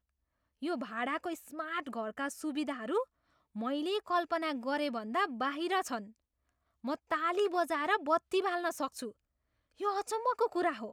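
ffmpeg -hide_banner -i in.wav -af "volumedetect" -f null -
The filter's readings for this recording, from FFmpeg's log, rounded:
mean_volume: -35.0 dB
max_volume: -16.5 dB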